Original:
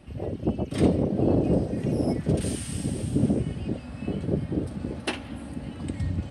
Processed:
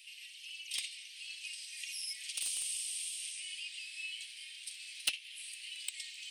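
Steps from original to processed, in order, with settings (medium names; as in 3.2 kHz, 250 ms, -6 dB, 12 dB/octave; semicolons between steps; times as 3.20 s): steep high-pass 2.4 kHz 48 dB/octave; compression 3:1, threshold -48 dBFS, peak gain reduction 14.5 dB; in parallel at -6 dB: word length cut 6-bit, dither none; on the sum: trim +10.5 dB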